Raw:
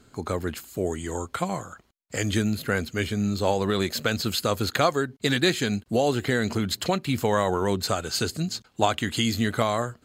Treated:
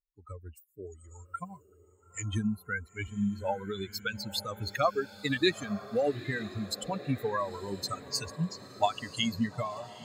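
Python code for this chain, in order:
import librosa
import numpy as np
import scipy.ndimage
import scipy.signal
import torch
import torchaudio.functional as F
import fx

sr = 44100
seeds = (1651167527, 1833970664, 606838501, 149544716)

y = fx.bin_expand(x, sr, power=3.0)
y = fx.peak_eq(y, sr, hz=12000.0, db=-7.0, octaves=0.33)
y = fx.echo_diffused(y, sr, ms=928, feedback_pct=59, wet_db=-15.5)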